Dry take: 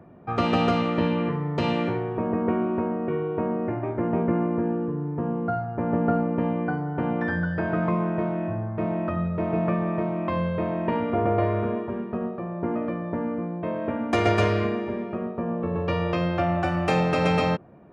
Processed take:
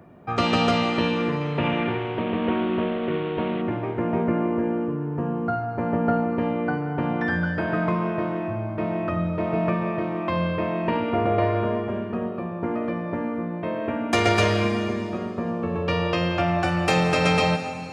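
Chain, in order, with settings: 1.41–3.62 CVSD 16 kbps; high shelf 2500 Hz +11 dB; reverb RT60 2.4 s, pre-delay 95 ms, DRR 9 dB

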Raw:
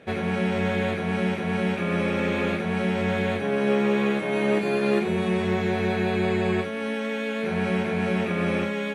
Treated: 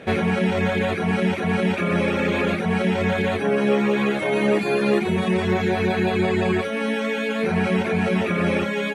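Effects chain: in parallel at +2.5 dB: limiter -23 dBFS, peak gain reduction 11 dB; on the sum: reverb removal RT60 1 s; gain +2 dB

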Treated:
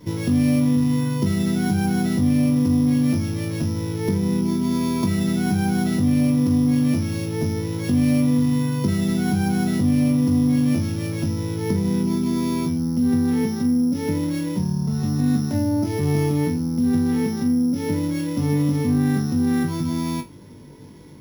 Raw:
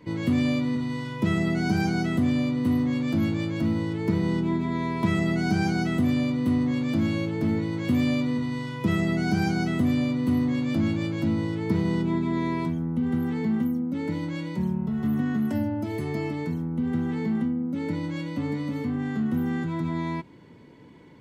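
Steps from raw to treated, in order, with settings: sample sorter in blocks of 8 samples; low shelf 160 Hz +9.5 dB; compressor, threshold -22 dBFS, peak gain reduction 8 dB; flutter echo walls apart 3.5 m, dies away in 0.21 s; gain +2.5 dB

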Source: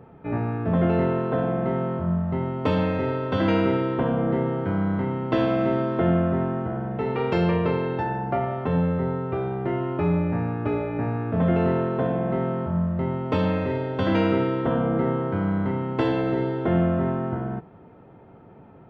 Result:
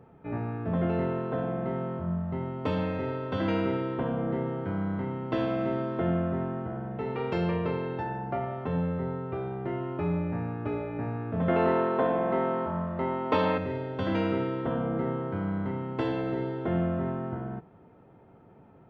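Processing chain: 11.48–13.58 graphic EQ 125/250/500/1000/2000/4000 Hz -10/+4/+4/+9/+5/+6 dB; gain -6.5 dB

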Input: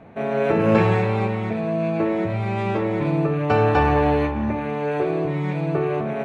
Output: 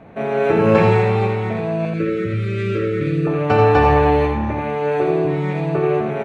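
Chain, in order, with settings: 1.85–3.27 elliptic band-stop 530–1300 Hz, stop band 50 dB; on a send: tapped delay 84/132 ms -5.5/-18.5 dB; on the sum: gain +2.5 dB

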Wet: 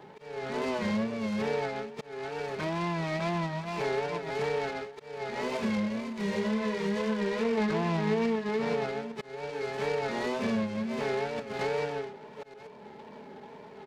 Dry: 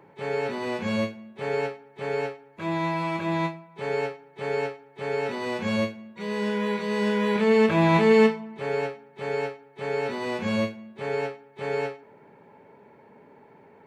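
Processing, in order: reverse delay 0.38 s, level -9.5 dB; 5.3–7.58 chorus voices 4, 1.1 Hz, delay 25 ms, depth 3 ms; treble ducked by the level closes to 2500 Hz, closed at -22.5 dBFS; echo 0.128 s -7 dB; wow and flutter 82 cents; notches 60/120/180/240/300/360/420/480 Hz; compressor 4:1, threshold -33 dBFS, peak gain reduction 16.5 dB; auto swell 0.441 s; comb 4.7 ms, depth 34%; noise-modulated delay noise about 1900 Hz, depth 0.035 ms; gain +3.5 dB

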